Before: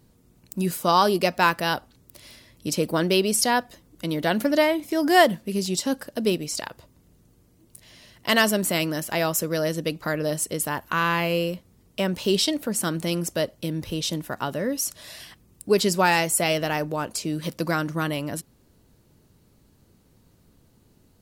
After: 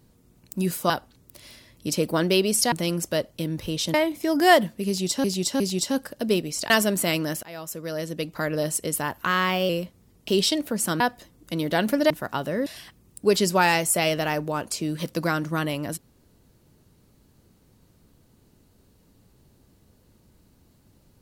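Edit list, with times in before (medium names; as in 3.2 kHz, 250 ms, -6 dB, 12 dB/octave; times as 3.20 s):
0.90–1.70 s: delete
3.52–4.62 s: swap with 12.96–14.18 s
5.56–5.92 s: loop, 3 plays
6.66–8.37 s: delete
9.10–10.22 s: fade in, from -20.5 dB
10.94–11.40 s: speed 109%
11.99–12.24 s: delete
14.74–15.10 s: delete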